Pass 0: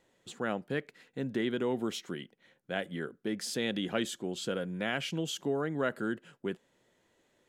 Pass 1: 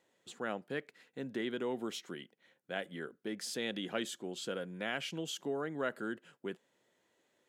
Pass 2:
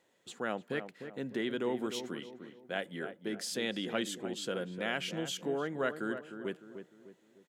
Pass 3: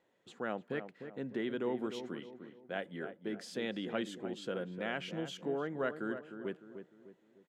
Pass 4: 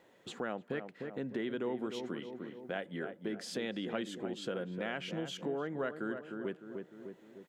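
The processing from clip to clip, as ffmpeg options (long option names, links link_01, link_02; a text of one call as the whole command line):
ffmpeg -i in.wav -af "highpass=frequency=250:poles=1,volume=-3.5dB" out.wav
ffmpeg -i in.wav -filter_complex "[0:a]asplit=2[link_01][link_02];[link_02]adelay=302,lowpass=frequency=1300:poles=1,volume=-8.5dB,asplit=2[link_03][link_04];[link_04]adelay=302,lowpass=frequency=1300:poles=1,volume=0.43,asplit=2[link_05][link_06];[link_06]adelay=302,lowpass=frequency=1300:poles=1,volume=0.43,asplit=2[link_07][link_08];[link_08]adelay=302,lowpass=frequency=1300:poles=1,volume=0.43,asplit=2[link_09][link_10];[link_10]adelay=302,lowpass=frequency=1300:poles=1,volume=0.43[link_11];[link_01][link_03][link_05][link_07][link_09][link_11]amix=inputs=6:normalize=0,volume=2.5dB" out.wav
ffmpeg -i in.wav -af "lowpass=frequency=2000:poles=1,volume=-1.5dB" out.wav
ffmpeg -i in.wav -af "acompressor=threshold=-54dB:ratio=2,volume=11dB" out.wav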